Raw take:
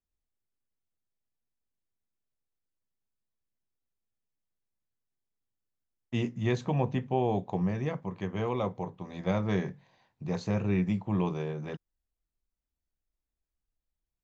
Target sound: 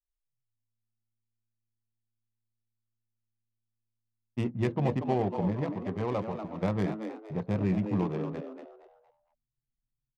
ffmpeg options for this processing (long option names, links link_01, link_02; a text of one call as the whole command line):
ffmpeg -i in.wav -filter_complex "[0:a]adynamicsmooth=sensitivity=5:basefreq=690,anlmdn=0.000251,asplit=5[link_01][link_02][link_03][link_04][link_05];[link_02]adelay=326,afreqshift=110,volume=-8dB[link_06];[link_03]adelay=652,afreqshift=220,volume=-18.2dB[link_07];[link_04]adelay=978,afreqshift=330,volume=-28.3dB[link_08];[link_05]adelay=1304,afreqshift=440,volume=-38.5dB[link_09];[link_01][link_06][link_07][link_08][link_09]amix=inputs=5:normalize=0,atempo=1.4" out.wav